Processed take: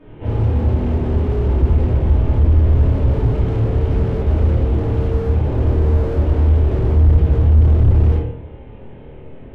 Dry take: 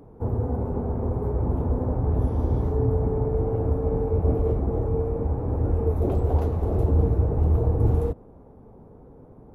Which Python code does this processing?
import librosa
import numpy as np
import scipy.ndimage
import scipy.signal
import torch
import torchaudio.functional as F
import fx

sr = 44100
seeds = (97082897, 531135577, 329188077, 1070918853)

y = fx.cvsd(x, sr, bps=16000)
y = fx.low_shelf(y, sr, hz=70.0, db=5.5, at=(1.55, 3.46))
y = 10.0 ** (-20.0 / 20.0) * np.tanh(y / 10.0 ** (-20.0 / 20.0))
y = fx.peak_eq(y, sr, hz=570.0, db=fx.line((5.38, 4.0), (6.04, 12.0)), octaves=1.2, at=(5.38, 6.04), fade=0.02)
y = fx.room_flutter(y, sr, wall_m=4.5, rt60_s=0.31)
y = fx.room_shoebox(y, sr, seeds[0], volume_m3=140.0, walls='mixed', distance_m=2.7)
y = fx.slew_limit(y, sr, full_power_hz=51.0)
y = y * librosa.db_to_amplitude(-3.5)